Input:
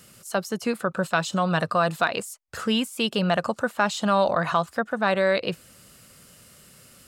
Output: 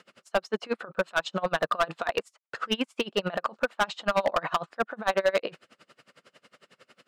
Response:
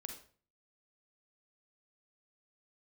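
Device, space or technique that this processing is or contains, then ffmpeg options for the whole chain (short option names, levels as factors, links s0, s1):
helicopter radio: -af "highpass=340,lowpass=2900,aeval=exprs='val(0)*pow(10,-29*(0.5-0.5*cos(2*PI*11*n/s))/20)':c=same,asoftclip=type=hard:threshold=0.0631,volume=2.11"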